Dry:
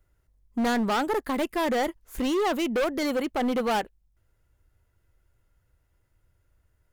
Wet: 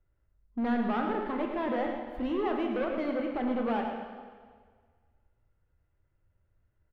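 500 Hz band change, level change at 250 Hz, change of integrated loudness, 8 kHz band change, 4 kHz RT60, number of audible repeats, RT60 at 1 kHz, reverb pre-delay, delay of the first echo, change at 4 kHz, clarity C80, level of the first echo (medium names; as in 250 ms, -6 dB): -5.0 dB, -3.0 dB, -5.0 dB, under -30 dB, 1.6 s, 1, 1.7 s, 7 ms, 110 ms, -13.5 dB, 3.5 dB, -8.0 dB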